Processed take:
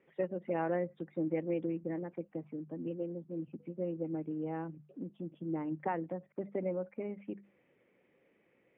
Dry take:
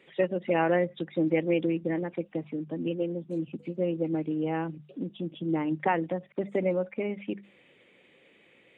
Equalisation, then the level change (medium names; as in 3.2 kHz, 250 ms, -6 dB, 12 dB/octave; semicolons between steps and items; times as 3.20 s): low-pass 1.9 kHz 12 dB/octave; distance through air 290 m; -7.5 dB